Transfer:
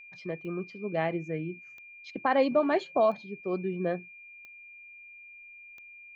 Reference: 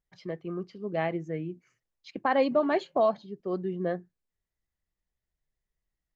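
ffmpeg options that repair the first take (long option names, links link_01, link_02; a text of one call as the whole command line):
ffmpeg -i in.wav -af "adeclick=threshold=4,bandreject=frequency=2400:width=30" out.wav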